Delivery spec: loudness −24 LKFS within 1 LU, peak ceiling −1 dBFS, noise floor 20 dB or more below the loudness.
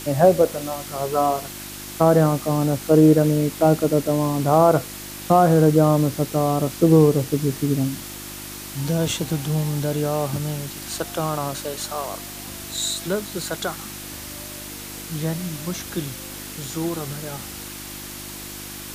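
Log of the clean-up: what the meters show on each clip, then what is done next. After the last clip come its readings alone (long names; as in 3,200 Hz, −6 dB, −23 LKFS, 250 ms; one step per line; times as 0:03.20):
mains hum 50 Hz; hum harmonics up to 350 Hz; level of the hum −40 dBFS; background noise floor −36 dBFS; target noise floor −41 dBFS; integrated loudness −21.0 LKFS; sample peak −3.5 dBFS; target loudness −24.0 LKFS
→ hum removal 50 Hz, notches 7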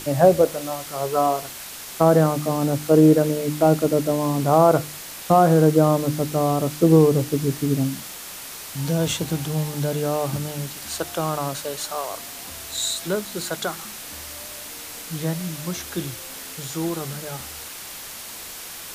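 mains hum none found; background noise floor −37 dBFS; target noise floor −42 dBFS
→ broadband denoise 6 dB, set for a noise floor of −37 dBFS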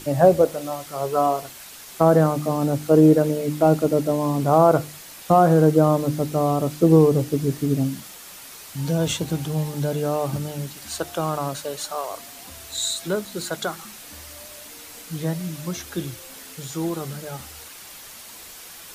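background noise floor −42 dBFS; integrated loudness −21.5 LKFS; sample peak −3.5 dBFS; target loudness −24.0 LKFS
→ level −2.5 dB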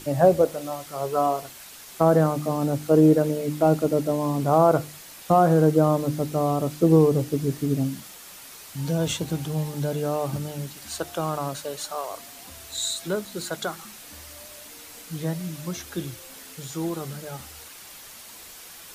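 integrated loudness −24.0 LKFS; sample peak −6.0 dBFS; background noise floor −44 dBFS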